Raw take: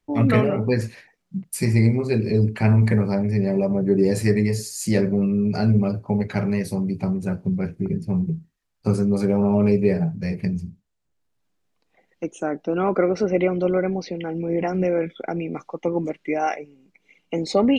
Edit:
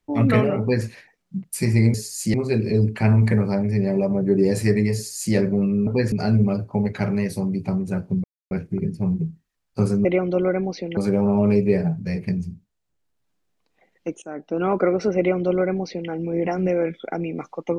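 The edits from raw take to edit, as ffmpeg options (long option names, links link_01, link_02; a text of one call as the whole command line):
ffmpeg -i in.wav -filter_complex "[0:a]asplit=9[link_01][link_02][link_03][link_04][link_05][link_06][link_07][link_08][link_09];[link_01]atrim=end=1.942[link_10];[link_02]atrim=start=4.548:end=4.952[link_11];[link_03]atrim=start=1.938:end=5.472[link_12];[link_04]atrim=start=0.598:end=0.852[link_13];[link_05]atrim=start=5.468:end=7.59,asetpts=PTS-STARTPTS,afade=type=out:start_time=2.118:duration=0.004:curve=hsin,apad=pad_dur=0.27[link_14];[link_06]atrim=start=7.59:end=9.132,asetpts=PTS-STARTPTS,afade=type=in:duration=0.004:curve=hsin[link_15];[link_07]atrim=start=13.338:end=14.262[link_16];[link_08]atrim=start=9.128:end=12.38,asetpts=PTS-STARTPTS,afade=type=out:start_time=3.248:duration=0.004:curve=hsin:silence=0.177828[link_17];[link_09]atrim=start=12.38,asetpts=PTS-STARTPTS,afade=type=in:duration=0.39:silence=0.177828[link_18];[link_10][link_11]acrossfade=duration=0.004:curve1=hsin:curve2=hsin[link_19];[link_19][link_12]acrossfade=duration=0.004:curve1=hsin:curve2=hsin[link_20];[link_20][link_13]acrossfade=duration=0.004:curve1=hsin:curve2=hsin[link_21];[link_14][link_15]concat=n=2:v=0:a=1[link_22];[link_21][link_22]acrossfade=duration=0.004:curve1=hsin:curve2=hsin[link_23];[link_23][link_16]acrossfade=duration=0.004:curve1=hsin:curve2=hsin[link_24];[link_17][link_18]concat=n=2:v=0:a=1[link_25];[link_24][link_25]acrossfade=duration=0.004:curve1=hsin:curve2=hsin" out.wav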